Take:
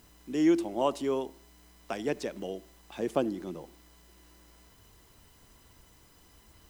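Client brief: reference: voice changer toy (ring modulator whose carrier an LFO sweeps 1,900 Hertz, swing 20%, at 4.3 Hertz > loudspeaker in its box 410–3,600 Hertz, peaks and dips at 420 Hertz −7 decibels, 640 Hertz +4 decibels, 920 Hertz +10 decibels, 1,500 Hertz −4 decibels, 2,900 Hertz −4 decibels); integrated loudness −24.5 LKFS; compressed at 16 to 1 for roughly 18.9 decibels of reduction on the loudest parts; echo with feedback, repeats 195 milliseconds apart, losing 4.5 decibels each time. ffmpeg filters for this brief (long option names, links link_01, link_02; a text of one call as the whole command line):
ffmpeg -i in.wav -af "acompressor=threshold=-38dB:ratio=16,aecho=1:1:195|390|585|780|975|1170|1365|1560|1755:0.596|0.357|0.214|0.129|0.0772|0.0463|0.0278|0.0167|0.01,aeval=exprs='val(0)*sin(2*PI*1900*n/s+1900*0.2/4.3*sin(2*PI*4.3*n/s))':channel_layout=same,highpass=410,equalizer=frequency=420:width_type=q:width=4:gain=-7,equalizer=frequency=640:width_type=q:width=4:gain=4,equalizer=frequency=920:width_type=q:width=4:gain=10,equalizer=frequency=1500:width_type=q:width=4:gain=-4,equalizer=frequency=2900:width_type=q:width=4:gain=-4,lowpass=frequency=3600:width=0.5412,lowpass=frequency=3600:width=1.3066,volume=20dB" out.wav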